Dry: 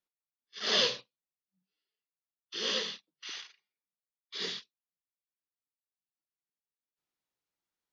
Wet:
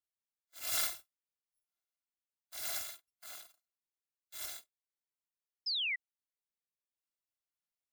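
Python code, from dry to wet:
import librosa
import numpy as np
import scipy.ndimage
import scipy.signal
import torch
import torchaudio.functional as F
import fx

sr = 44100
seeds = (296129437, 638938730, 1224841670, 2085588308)

y = fx.bit_reversed(x, sr, seeds[0], block=256)
y = fx.spec_paint(y, sr, seeds[1], shape='fall', start_s=5.66, length_s=0.3, low_hz=1900.0, high_hz=5300.0, level_db=-28.0)
y = y * 10.0 ** (-6.5 / 20.0)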